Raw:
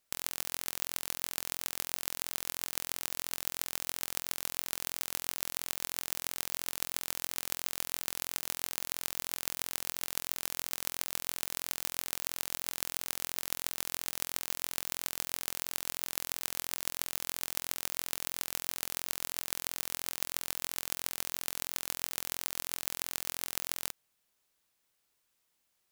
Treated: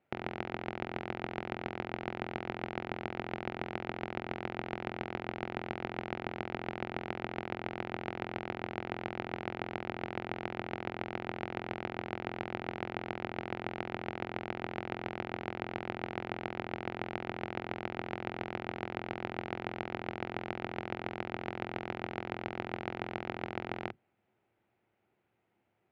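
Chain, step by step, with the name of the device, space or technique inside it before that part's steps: sub-octave bass pedal (octaver, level -3 dB; speaker cabinet 87–2100 Hz, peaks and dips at 110 Hz +9 dB, 210 Hz +6 dB, 360 Hz +9 dB, 770 Hz +5 dB, 1100 Hz -8 dB, 1700 Hz -6 dB); gain +8 dB

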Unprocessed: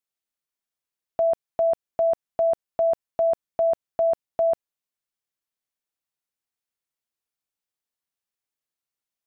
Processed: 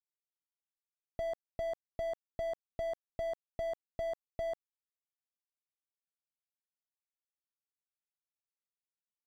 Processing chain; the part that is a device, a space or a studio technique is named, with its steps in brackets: early transistor amplifier (crossover distortion -51 dBFS; slew limiter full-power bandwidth 8.7 Hz); gain +3.5 dB

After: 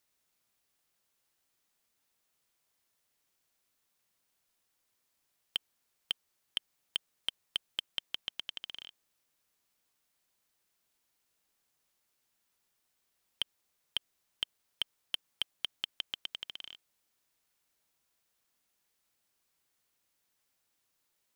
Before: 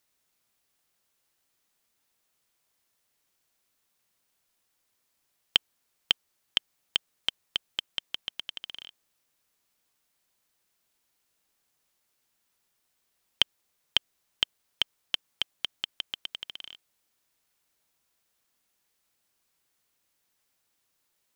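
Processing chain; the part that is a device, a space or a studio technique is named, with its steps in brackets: limiter into clipper (limiter -10 dBFS, peak gain reduction 7.5 dB; hard clip -15 dBFS, distortion -15 dB); gain -3 dB

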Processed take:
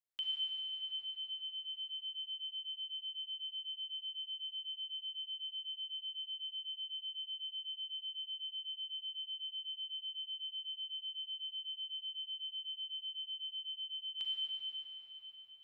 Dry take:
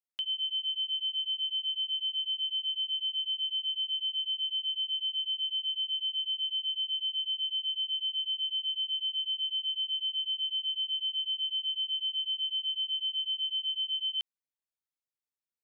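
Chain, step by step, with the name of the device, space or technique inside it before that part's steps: cathedral (reverb RT60 5.5 s, pre-delay 34 ms, DRR -2 dB); gain -5.5 dB

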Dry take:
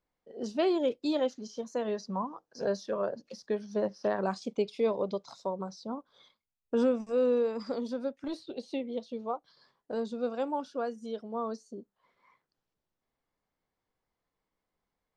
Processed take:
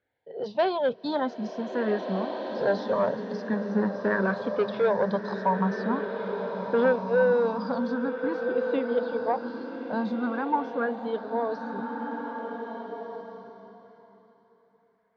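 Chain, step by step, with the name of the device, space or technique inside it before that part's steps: barber-pole phaser into a guitar amplifier (endless phaser +0.45 Hz; soft clip -25.5 dBFS, distortion -16 dB; speaker cabinet 110–3900 Hz, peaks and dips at 110 Hz +8 dB, 180 Hz +8 dB, 330 Hz -5 dB, 940 Hz +7 dB, 1600 Hz +9 dB, 2700 Hz -6 dB); bloom reverb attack 1.69 s, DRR 5 dB; gain +8.5 dB

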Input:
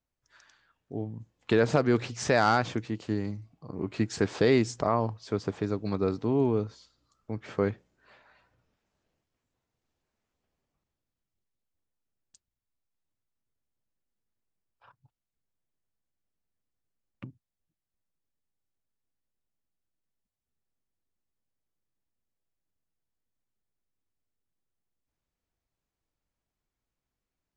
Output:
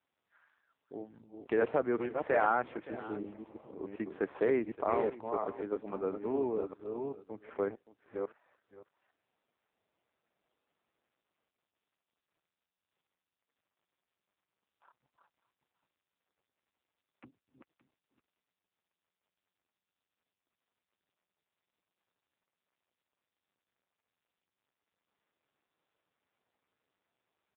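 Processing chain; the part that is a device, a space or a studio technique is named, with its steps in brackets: reverse delay 0.396 s, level -4.5 dB; air absorption 460 m; spectral repair 2.89–3.72, 510–2700 Hz both; satellite phone (BPF 380–3200 Hz; echo 0.571 s -17 dB; gain -1.5 dB; AMR-NB 5.9 kbps 8000 Hz)

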